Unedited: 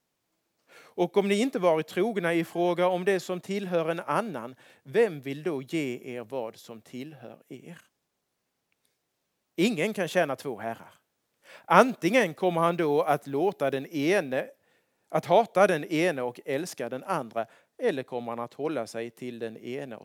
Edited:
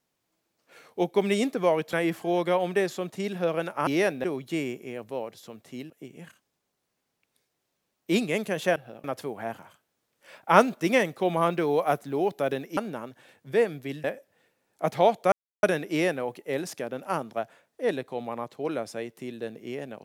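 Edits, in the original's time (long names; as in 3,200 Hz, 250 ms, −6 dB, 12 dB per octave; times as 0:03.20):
0:01.93–0:02.24: remove
0:04.18–0:05.45: swap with 0:13.98–0:14.35
0:07.11–0:07.39: move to 0:10.25
0:15.63: splice in silence 0.31 s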